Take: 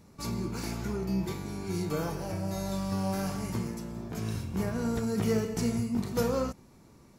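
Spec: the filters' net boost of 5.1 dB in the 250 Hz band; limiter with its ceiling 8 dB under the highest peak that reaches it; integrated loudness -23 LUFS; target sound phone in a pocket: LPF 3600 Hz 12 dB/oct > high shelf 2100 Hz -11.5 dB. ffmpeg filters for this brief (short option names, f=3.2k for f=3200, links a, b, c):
-af "equalizer=f=250:t=o:g=6.5,alimiter=limit=-21dB:level=0:latency=1,lowpass=3.6k,highshelf=f=2.1k:g=-11.5,volume=8dB"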